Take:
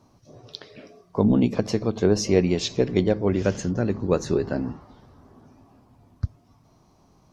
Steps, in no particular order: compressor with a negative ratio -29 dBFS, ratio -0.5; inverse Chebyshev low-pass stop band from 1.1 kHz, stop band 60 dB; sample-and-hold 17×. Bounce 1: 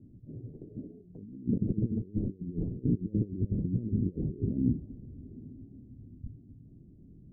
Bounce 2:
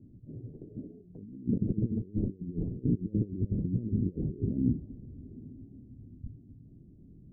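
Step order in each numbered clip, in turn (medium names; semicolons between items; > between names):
sample-and-hold > compressor with a negative ratio > inverse Chebyshev low-pass; compressor with a negative ratio > sample-and-hold > inverse Chebyshev low-pass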